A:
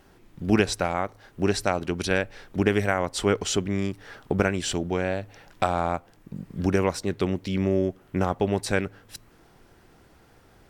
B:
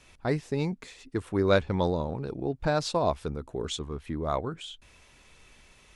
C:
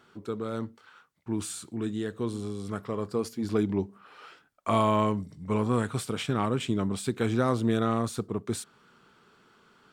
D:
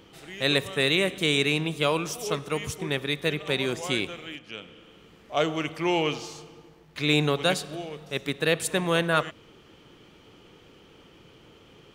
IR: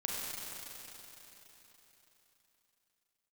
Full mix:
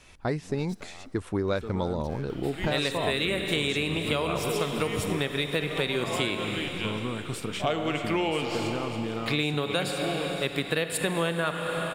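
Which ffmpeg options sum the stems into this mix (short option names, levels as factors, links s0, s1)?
-filter_complex "[0:a]aeval=exprs='(tanh(17.8*val(0)+0.8)-tanh(0.8))/17.8':c=same,volume=0.15,asplit=2[s0][s1];[s1]volume=0.211[s2];[1:a]volume=1.41[s3];[2:a]adelay=1350,volume=1.12[s4];[3:a]equalizer=f=6100:w=6.5:g=-14.5,adelay=2300,volume=1.41,asplit=2[s5][s6];[s6]volume=0.422[s7];[s0][s4]amix=inputs=2:normalize=0,acompressor=threshold=0.0398:ratio=6,volume=1[s8];[4:a]atrim=start_sample=2205[s9];[s2][s7]amix=inputs=2:normalize=0[s10];[s10][s9]afir=irnorm=-1:irlink=0[s11];[s3][s5][s8][s11]amix=inputs=4:normalize=0,acompressor=threshold=0.0631:ratio=6"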